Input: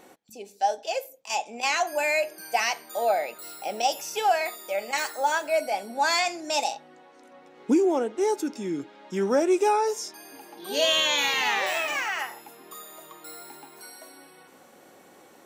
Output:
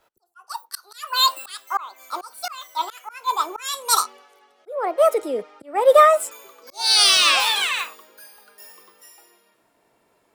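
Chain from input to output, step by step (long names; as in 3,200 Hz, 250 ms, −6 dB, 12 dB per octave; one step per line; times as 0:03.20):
gliding playback speed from 178% → 121%
volume swells 311 ms
multiband upward and downward expander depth 70%
level +5 dB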